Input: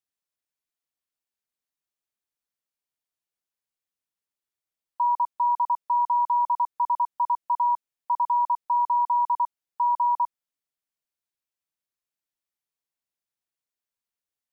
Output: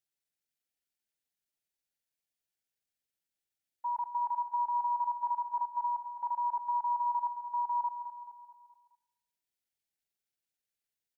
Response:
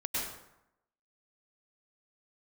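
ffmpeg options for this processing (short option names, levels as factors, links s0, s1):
-filter_complex "[0:a]equalizer=f=700:w=0.58:g=-3,aecho=1:1:277|554|831|1108|1385:0.299|0.149|0.0746|0.0373|0.0187,asplit=2[s0][s1];[1:a]atrim=start_sample=2205,asetrate=31752,aresample=44100,adelay=7[s2];[s1][s2]afir=irnorm=-1:irlink=0,volume=0.075[s3];[s0][s3]amix=inputs=2:normalize=0,atempo=1.3,asuperstop=centerf=1100:order=4:qfactor=2.5"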